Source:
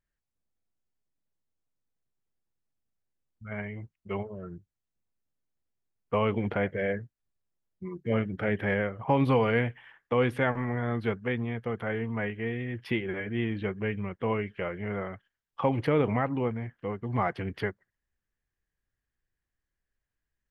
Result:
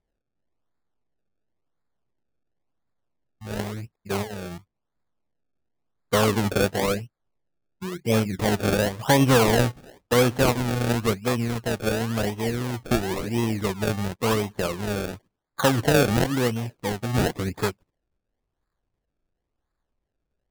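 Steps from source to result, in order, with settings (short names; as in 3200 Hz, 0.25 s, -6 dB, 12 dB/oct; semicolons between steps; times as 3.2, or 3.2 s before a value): decimation with a swept rate 30×, swing 100% 0.95 Hz; gain +6 dB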